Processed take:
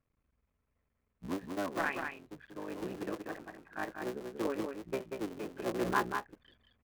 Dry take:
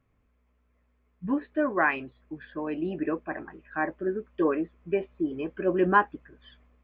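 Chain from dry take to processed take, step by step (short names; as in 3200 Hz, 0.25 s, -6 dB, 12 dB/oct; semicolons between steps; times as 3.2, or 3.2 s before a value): cycle switcher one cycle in 3, muted; echo 0.188 s -5.5 dB; gain -8.5 dB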